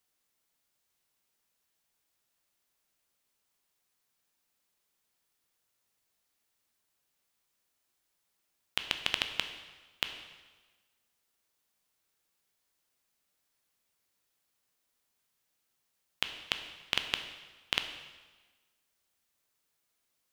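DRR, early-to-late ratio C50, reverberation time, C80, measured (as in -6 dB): 6.5 dB, 9.0 dB, 1.3 s, 10.0 dB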